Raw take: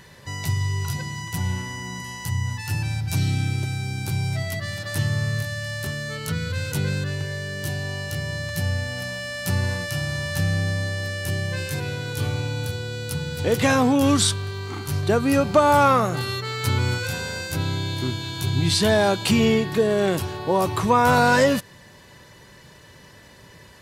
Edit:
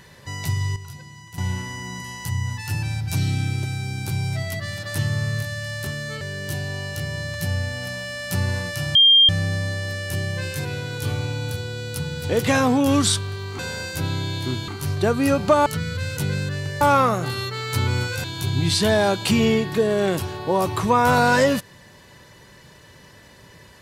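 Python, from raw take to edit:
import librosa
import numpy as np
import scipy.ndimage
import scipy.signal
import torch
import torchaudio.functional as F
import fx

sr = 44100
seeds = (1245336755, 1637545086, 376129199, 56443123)

y = fx.edit(x, sr, fx.clip_gain(start_s=0.76, length_s=0.62, db=-11.0),
    fx.move(start_s=6.21, length_s=1.15, to_s=15.72),
    fx.bleep(start_s=10.1, length_s=0.34, hz=3200.0, db=-9.5),
    fx.move(start_s=17.15, length_s=1.09, to_s=14.74), tone=tone)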